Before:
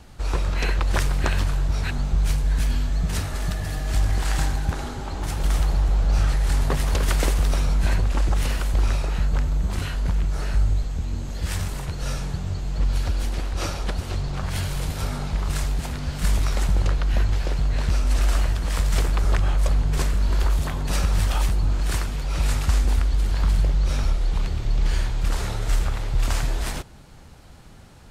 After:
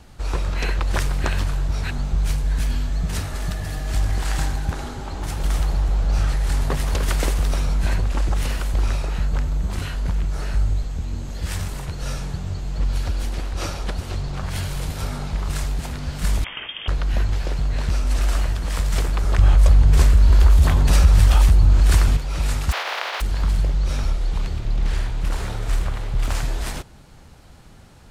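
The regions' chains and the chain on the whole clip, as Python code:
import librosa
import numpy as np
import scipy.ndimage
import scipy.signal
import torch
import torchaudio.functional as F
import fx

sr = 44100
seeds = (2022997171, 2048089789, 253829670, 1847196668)

y = fx.chain(x, sr, fx.highpass(hz=170.0, slope=24),
    fx.freq_invert(carrier_hz=3400), at=(16.44, 16.88))
y = fx.chain(y, sr, fx.peak_eq(hz=68.0, db=11.5, octaves=0.92),
    fx.env_flatten(amount_pct=50), at=(19.38, 22.17))
y = fx.spec_flatten(y, sr, power=0.22, at=(22.71, 23.2), fade=0.02)
y = fx.highpass(y, sr, hz=570.0, slope=24, at=(22.71, 23.2), fade=0.02)
y = fx.air_absorb(y, sr, metres=310.0, at=(22.71, 23.2), fade=0.02)
y = fx.chain(y, sr, fx.peak_eq(hz=5600.0, db=-3.0, octaves=1.1),
    fx.doppler_dist(depth_ms=0.67), at=(24.59, 26.35))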